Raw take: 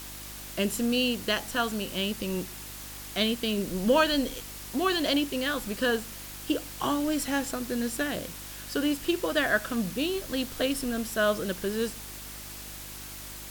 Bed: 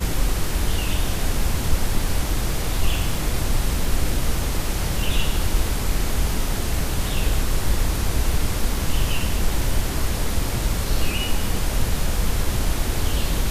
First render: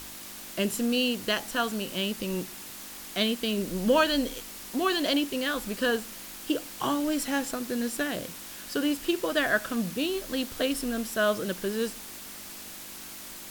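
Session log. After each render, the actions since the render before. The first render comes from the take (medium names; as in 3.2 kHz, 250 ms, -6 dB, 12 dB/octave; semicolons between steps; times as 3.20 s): de-hum 50 Hz, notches 3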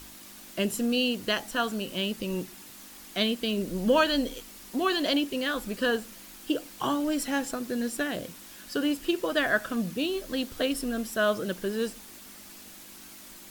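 noise reduction 6 dB, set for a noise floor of -43 dBFS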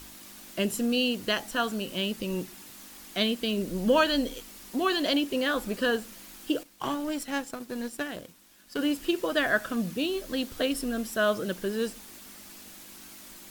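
5.30–5.81 s: peaking EQ 620 Hz +4 dB 2.3 oct; 6.63–8.79 s: power-law waveshaper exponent 1.4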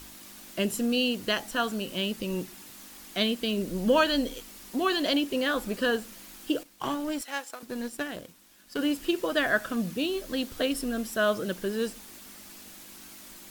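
7.21–7.63 s: high-pass 600 Hz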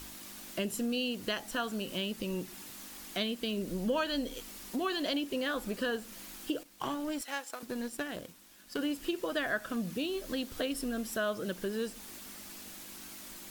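compression 2:1, threshold -35 dBFS, peak gain reduction 10 dB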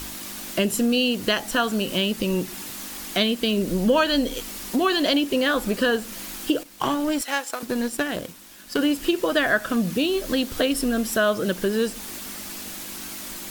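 trim +12 dB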